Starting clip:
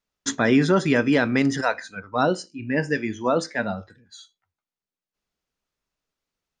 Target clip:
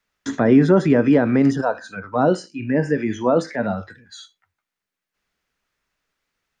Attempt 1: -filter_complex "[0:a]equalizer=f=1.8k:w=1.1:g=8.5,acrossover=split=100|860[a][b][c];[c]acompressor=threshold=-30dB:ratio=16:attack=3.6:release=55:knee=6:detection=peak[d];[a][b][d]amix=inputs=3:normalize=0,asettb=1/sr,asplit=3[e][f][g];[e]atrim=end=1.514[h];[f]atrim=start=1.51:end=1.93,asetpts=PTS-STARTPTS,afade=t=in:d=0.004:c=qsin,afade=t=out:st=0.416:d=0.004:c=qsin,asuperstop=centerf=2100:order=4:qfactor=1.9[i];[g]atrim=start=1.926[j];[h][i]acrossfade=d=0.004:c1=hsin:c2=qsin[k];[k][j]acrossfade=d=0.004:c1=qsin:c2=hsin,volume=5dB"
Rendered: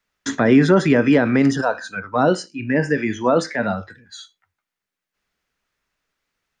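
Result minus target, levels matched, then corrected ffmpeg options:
compressor: peak gain reduction -8.5 dB
-filter_complex "[0:a]equalizer=f=1.8k:w=1.1:g=8.5,acrossover=split=100|860[a][b][c];[c]acompressor=threshold=-39dB:ratio=16:attack=3.6:release=55:knee=6:detection=peak[d];[a][b][d]amix=inputs=3:normalize=0,asettb=1/sr,asplit=3[e][f][g];[e]atrim=end=1.514[h];[f]atrim=start=1.51:end=1.93,asetpts=PTS-STARTPTS,afade=t=in:d=0.004:c=qsin,afade=t=out:st=0.416:d=0.004:c=qsin,asuperstop=centerf=2100:order=4:qfactor=1.9[i];[g]atrim=start=1.926[j];[h][i]acrossfade=d=0.004:c1=hsin:c2=qsin[k];[k][j]acrossfade=d=0.004:c1=qsin:c2=hsin,volume=5dB"

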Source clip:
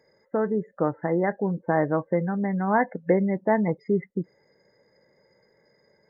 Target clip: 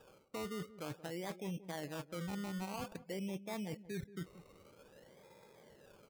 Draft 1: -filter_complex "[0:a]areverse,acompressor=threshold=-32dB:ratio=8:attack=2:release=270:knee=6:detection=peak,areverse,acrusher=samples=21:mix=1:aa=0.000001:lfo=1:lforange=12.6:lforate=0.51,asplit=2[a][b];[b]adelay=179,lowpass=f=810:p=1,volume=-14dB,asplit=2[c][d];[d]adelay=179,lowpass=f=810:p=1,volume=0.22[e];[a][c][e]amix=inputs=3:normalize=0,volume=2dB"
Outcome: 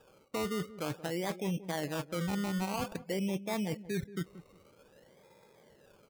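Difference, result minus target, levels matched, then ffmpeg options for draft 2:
compressor: peak gain reduction -8 dB
-filter_complex "[0:a]areverse,acompressor=threshold=-41dB:ratio=8:attack=2:release=270:knee=6:detection=peak,areverse,acrusher=samples=21:mix=1:aa=0.000001:lfo=1:lforange=12.6:lforate=0.51,asplit=2[a][b];[b]adelay=179,lowpass=f=810:p=1,volume=-14dB,asplit=2[c][d];[d]adelay=179,lowpass=f=810:p=1,volume=0.22[e];[a][c][e]amix=inputs=3:normalize=0,volume=2dB"

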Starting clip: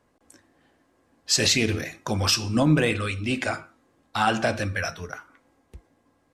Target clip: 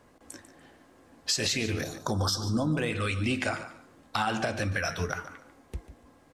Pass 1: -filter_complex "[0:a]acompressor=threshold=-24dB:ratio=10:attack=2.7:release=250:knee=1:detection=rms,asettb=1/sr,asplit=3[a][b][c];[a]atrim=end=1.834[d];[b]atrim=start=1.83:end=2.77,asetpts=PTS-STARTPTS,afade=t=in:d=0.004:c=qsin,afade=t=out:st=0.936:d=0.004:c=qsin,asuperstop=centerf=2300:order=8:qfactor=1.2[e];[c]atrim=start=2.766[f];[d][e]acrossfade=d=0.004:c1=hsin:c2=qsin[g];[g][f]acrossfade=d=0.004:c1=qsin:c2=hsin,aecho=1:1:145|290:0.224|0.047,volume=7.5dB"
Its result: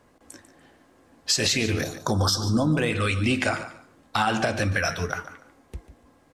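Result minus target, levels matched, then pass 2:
compressor: peak gain reduction -5.5 dB
-filter_complex "[0:a]acompressor=threshold=-30dB:ratio=10:attack=2.7:release=250:knee=1:detection=rms,asettb=1/sr,asplit=3[a][b][c];[a]atrim=end=1.834[d];[b]atrim=start=1.83:end=2.77,asetpts=PTS-STARTPTS,afade=t=in:d=0.004:c=qsin,afade=t=out:st=0.936:d=0.004:c=qsin,asuperstop=centerf=2300:order=8:qfactor=1.2[e];[c]atrim=start=2.766[f];[d][e]acrossfade=d=0.004:c1=hsin:c2=qsin[g];[g][f]acrossfade=d=0.004:c1=qsin:c2=hsin,aecho=1:1:145|290:0.224|0.047,volume=7.5dB"

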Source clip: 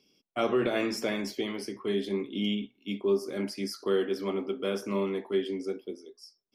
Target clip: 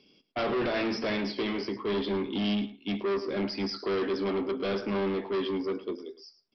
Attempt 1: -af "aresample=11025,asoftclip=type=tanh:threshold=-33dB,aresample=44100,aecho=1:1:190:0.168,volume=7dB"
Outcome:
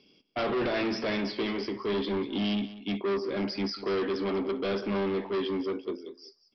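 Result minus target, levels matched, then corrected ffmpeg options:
echo 83 ms late
-af "aresample=11025,asoftclip=type=tanh:threshold=-33dB,aresample=44100,aecho=1:1:107:0.168,volume=7dB"

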